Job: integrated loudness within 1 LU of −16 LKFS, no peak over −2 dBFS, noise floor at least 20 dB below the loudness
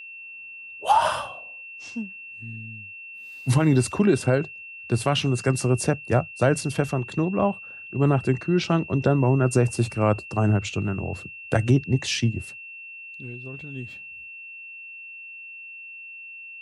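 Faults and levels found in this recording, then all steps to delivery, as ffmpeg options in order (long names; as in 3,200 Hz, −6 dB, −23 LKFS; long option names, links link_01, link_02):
interfering tone 2,700 Hz; level of the tone −38 dBFS; integrated loudness −23.5 LKFS; sample peak −7.0 dBFS; target loudness −16.0 LKFS
→ -af "bandreject=frequency=2700:width=30"
-af "volume=7.5dB,alimiter=limit=-2dB:level=0:latency=1"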